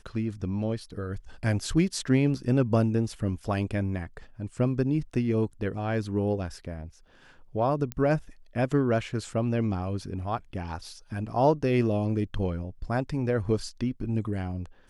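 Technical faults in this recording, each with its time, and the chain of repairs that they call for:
7.92 s: pop -17 dBFS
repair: de-click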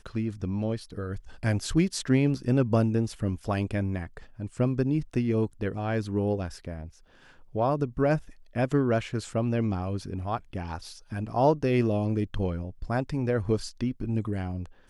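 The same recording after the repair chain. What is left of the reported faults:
nothing left

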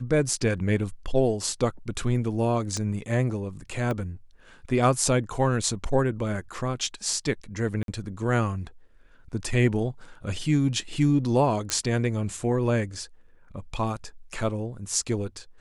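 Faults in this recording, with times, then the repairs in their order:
2.77 s: pop -18 dBFS
3.91 s: pop -18 dBFS
7.83–7.88 s: dropout 52 ms
11.70 s: pop -9 dBFS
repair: de-click; interpolate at 7.83 s, 52 ms

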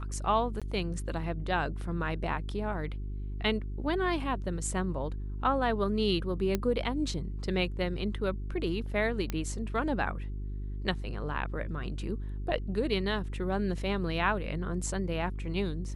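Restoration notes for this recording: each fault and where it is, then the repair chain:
hum 50 Hz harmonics 8 -36 dBFS
0.60–0.62 s: dropout 16 ms
6.55 s: pop -14 dBFS
9.30 s: pop -18 dBFS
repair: de-click; de-hum 50 Hz, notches 8; interpolate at 0.60 s, 16 ms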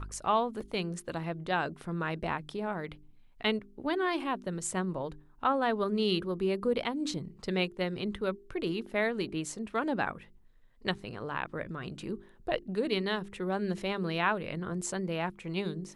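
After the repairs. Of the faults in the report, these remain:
nothing left

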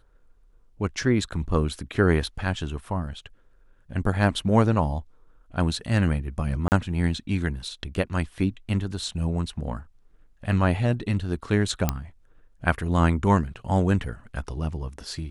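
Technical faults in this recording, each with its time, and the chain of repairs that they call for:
6.68–6.72 s: dropout 39 ms
11.89 s: pop -7 dBFS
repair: de-click; interpolate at 6.68 s, 39 ms

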